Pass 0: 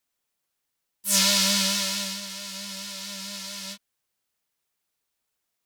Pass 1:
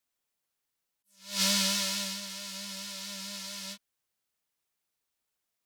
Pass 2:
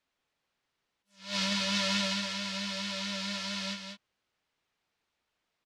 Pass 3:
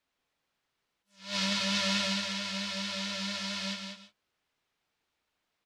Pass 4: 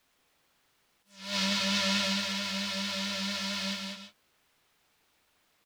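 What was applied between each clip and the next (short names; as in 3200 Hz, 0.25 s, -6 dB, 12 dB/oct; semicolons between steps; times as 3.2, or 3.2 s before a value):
attack slew limiter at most 150 dB/s; gain -4 dB
LPF 3700 Hz 12 dB/oct; limiter -27.5 dBFS, peak gain reduction 10.5 dB; echo 0.195 s -6.5 dB; gain +7.5 dB
non-linear reverb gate 0.17 s rising, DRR 9.5 dB
G.711 law mismatch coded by mu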